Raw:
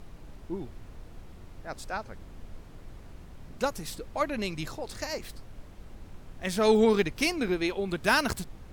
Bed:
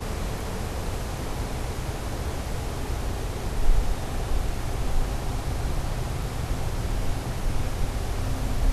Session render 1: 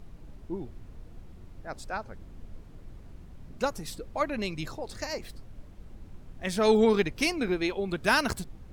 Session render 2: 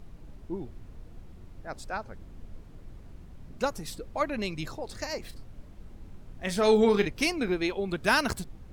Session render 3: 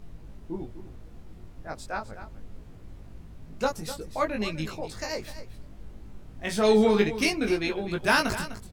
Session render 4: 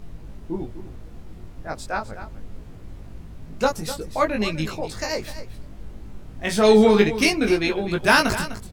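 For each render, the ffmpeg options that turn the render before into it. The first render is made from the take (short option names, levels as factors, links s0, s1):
-af "afftdn=nr=6:nf=-48"
-filter_complex "[0:a]asettb=1/sr,asplit=3[s0][s1][s2];[s0]atrim=end=5.214[s3];[s1]atrim=start=5.21:end=7.08,asetpts=PTS-STARTPTS,afade=t=in:d=0.004:c=qsin,afade=t=out:st=1.866:d=0.004:c=qsin,asplit=2[s4][s5];[s5]adelay=34,volume=0.299[s6];[s4][s6]amix=inputs=2:normalize=0,atrim=end_sample=82467[s7];[s2]atrim=start=7.076[s8];[s3][s7]acrossfade=d=0.004:c1=hsin:c2=qsin[s9];[s9][s8]acrossfade=d=0.004:c1=qsin:c2=hsin"
-filter_complex "[0:a]asplit=2[s0][s1];[s1]adelay=19,volume=0.708[s2];[s0][s2]amix=inputs=2:normalize=0,aecho=1:1:252:0.224"
-af "volume=2"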